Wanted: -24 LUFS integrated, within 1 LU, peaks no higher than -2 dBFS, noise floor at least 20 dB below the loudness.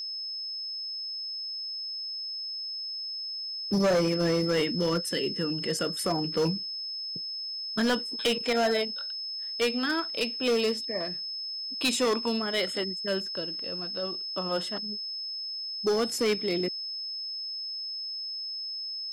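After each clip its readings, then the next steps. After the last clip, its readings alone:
clipped 1.2%; flat tops at -20.5 dBFS; steady tone 5200 Hz; tone level -33 dBFS; loudness -29.5 LUFS; peak -20.5 dBFS; loudness target -24.0 LUFS
-> clip repair -20.5 dBFS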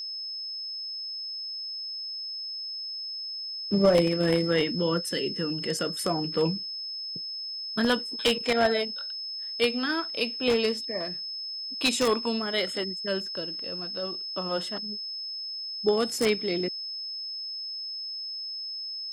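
clipped 0.0%; steady tone 5200 Hz; tone level -33 dBFS
-> notch 5200 Hz, Q 30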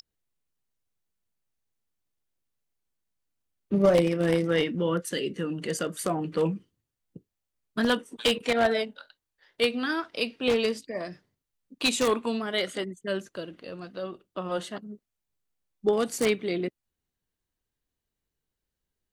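steady tone none; loudness -27.5 LUFS; peak -10.5 dBFS; loudness target -24.0 LUFS
-> gain +3.5 dB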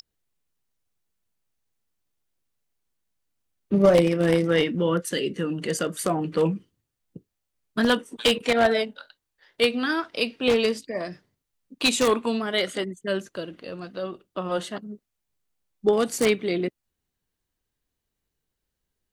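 loudness -24.0 LUFS; peak -7.0 dBFS; noise floor -82 dBFS

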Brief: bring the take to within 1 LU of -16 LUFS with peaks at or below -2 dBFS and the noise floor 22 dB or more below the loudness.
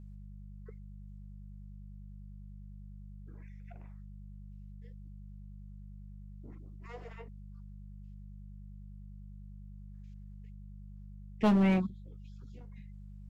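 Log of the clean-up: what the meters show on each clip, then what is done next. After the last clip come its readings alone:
clipped 0.3%; flat tops at -21.0 dBFS; hum 50 Hz; harmonics up to 200 Hz; hum level -45 dBFS; loudness -31.0 LUFS; peak -21.0 dBFS; loudness target -16.0 LUFS
-> clip repair -21 dBFS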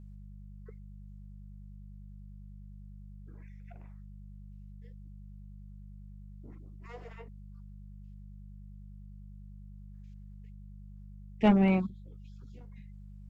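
clipped 0.0%; hum 50 Hz; harmonics up to 200 Hz; hum level -45 dBFS
-> de-hum 50 Hz, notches 4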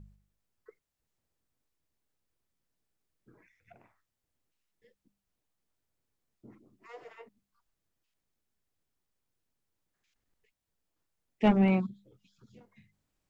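hum none; loudness -27.0 LUFS; peak -11.5 dBFS; loudness target -16.0 LUFS
-> gain +11 dB; limiter -2 dBFS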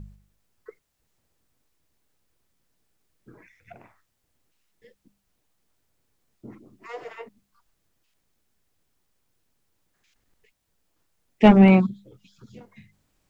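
loudness -16.5 LUFS; peak -2.0 dBFS; noise floor -75 dBFS

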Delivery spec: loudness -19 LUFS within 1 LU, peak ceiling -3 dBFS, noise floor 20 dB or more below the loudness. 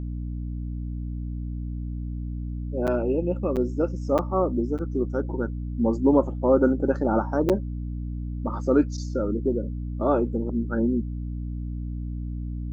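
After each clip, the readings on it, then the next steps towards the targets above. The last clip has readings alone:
dropouts 5; longest dropout 7.6 ms; hum 60 Hz; harmonics up to 300 Hz; hum level -28 dBFS; loudness -26.5 LUFS; peak -5.5 dBFS; loudness target -19.0 LUFS
-> interpolate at 2.87/3.56/4.18/4.78/7.49, 7.6 ms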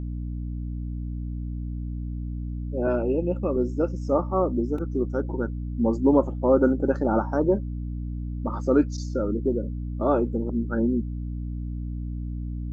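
dropouts 0; hum 60 Hz; harmonics up to 300 Hz; hum level -28 dBFS
-> notches 60/120/180/240/300 Hz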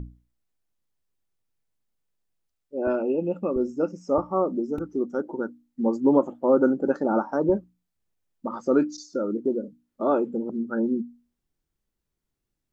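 hum none; loudness -25.5 LUFS; peak -6.0 dBFS; loudness target -19.0 LUFS
-> gain +6.5 dB; limiter -3 dBFS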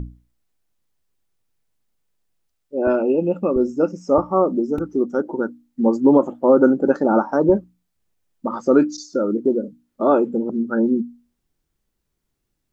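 loudness -19.5 LUFS; peak -3.0 dBFS; noise floor -76 dBFS

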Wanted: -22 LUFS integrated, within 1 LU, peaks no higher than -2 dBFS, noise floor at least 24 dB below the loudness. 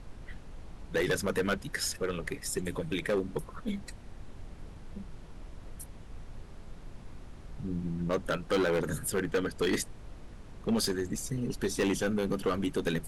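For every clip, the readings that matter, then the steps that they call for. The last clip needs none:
clipped 1.5%; flat tops at -23.0 dBFS; noise floor -48 dBFS; noise floor target -56 dBFS; loudness -32.0 LUFS; peak -23.0 dBFS; loudness target -22.0 LUFS
-> clip repair -23 dBFS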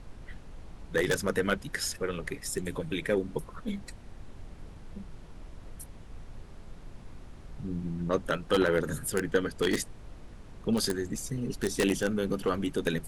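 clipped 0.0%; noise floor -48 dBFS; noise floor target -55 dBFS
-> noise print and reduce 7 dB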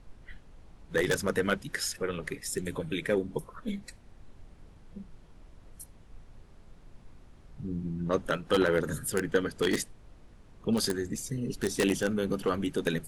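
noise floor -55 dBFS; loudness -31.0 LUFS; peak -14.0 dBFS; loudness target -22.0 LUFS
-> gain +9 dB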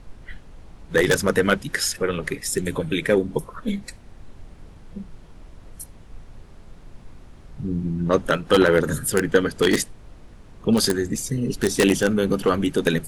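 loudness -22.0 LUFS; peak -5.0 dBFS; noise floor -46 dBFS

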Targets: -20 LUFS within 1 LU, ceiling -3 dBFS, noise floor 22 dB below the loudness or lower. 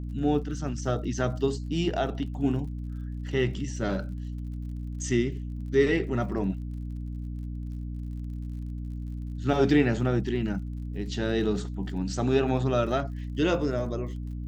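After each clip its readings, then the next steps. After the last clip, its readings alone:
ticks 47/s; hum 60 Hz; harmonics up to 300 Hz; hum level -32 dBFS; loudness -29.0 LUFS; peak -10.5 dBFS; loudness target -20.0 LUFS
-> de-click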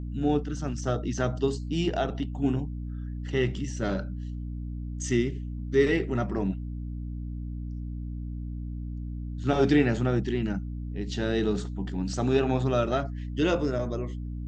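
ticks 0/s; hum 60 Hz; harmonics up to 300 Hz; hum level -32 dBFS
-> de-hum 60 Hz, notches 5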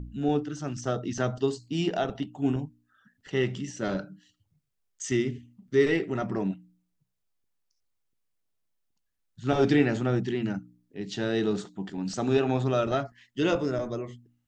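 hum none; loudness -28.5 LUFS; peak -10.5 dBFS; loudness target -20.0 LUFS
-> gain +8.5 dB; limiter -3 dBFS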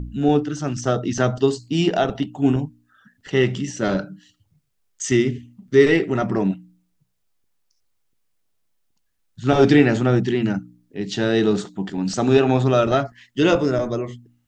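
loudness -20.0 LUFS; peak -3.0 dBFS; noise floor -69 dBFS

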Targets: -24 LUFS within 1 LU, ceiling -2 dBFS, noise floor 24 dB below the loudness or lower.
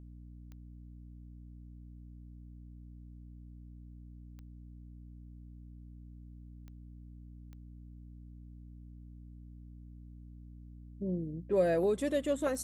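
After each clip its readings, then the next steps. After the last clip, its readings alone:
clicks 5; hum 60 Hz; harmonics up to 300 Hz; hum level -48 dBFS; loudness -32.0 LUFS; peak -18.5 dBFS; loudness target -24.0 LUFS
-> de-click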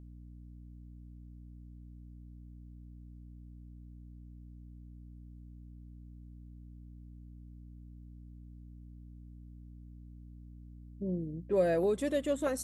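clicks 0; hum 60 Hz; harmonics up to 300 Hz; hum level -48 dBFS
-> de-hum 60 Hz, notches 5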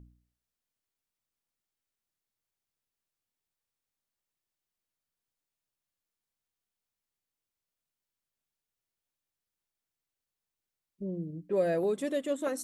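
hum none; loudness -32.0 LUFS; peak -18.5 dBFS; loudness target -24.0 LUFS
-> gain +8 dB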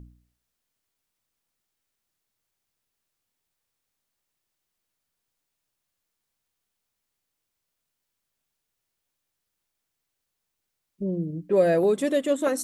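loudness -24.0 LUFS; peak -10.5 dBFS; noise floor -82 dBFS

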